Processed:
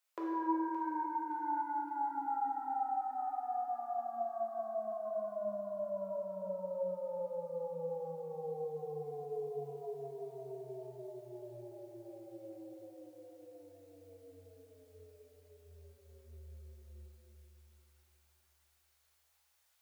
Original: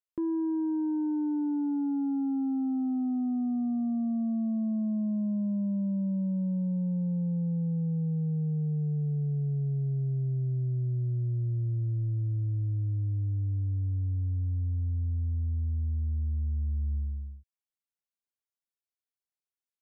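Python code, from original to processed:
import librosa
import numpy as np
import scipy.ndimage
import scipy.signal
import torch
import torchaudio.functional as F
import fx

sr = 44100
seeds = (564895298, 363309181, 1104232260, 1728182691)

p1 = fx.dereverb_blind(x, sr, rt60_s=1.4)
p2 = scipy.signal.sosfilt(scipy.signal.cheby2(4, 40, 270.0, 'highpass', fs=sr, output='sos'), p1)
p3 = fx.rider(p2, sr, range_db=10, speed_s=0.5)
p4 = p2 + (p3 * 10.0 ** (-1.0 / 20.0))
p5 = 10.0 ** (-37.0 / 20.0) * (np.abs((p4 / 10.0 ** (-37.0 / 20.0) + 3.0) % 4.0 - 2.0) - 1.0)
p6 = p5 + fx.echo_split(p5, sr, split_hz=780.0, low_ms=366, high_ms=569, feedback_pct=52, wet_db=-11, dry=0)
p7 = fx.rev_plate(p6, sr, seeds[0], rt60_s=2.6, hf_ratio=0.65, predelay_ms=0, drr_db=-5.5)
y = p7 * 10.0 ** (6.0 / 20.0)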